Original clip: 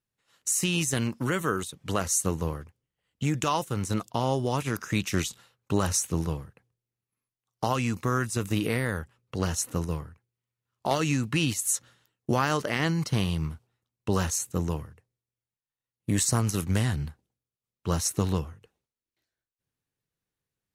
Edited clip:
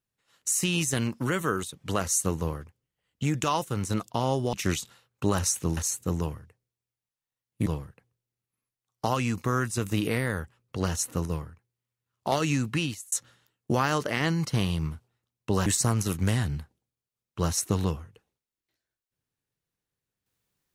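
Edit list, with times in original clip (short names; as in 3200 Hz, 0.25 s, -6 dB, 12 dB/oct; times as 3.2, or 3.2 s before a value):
4.53–5.01 cut
11.29–11.71 fade out
14.25–16.14 move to 6.25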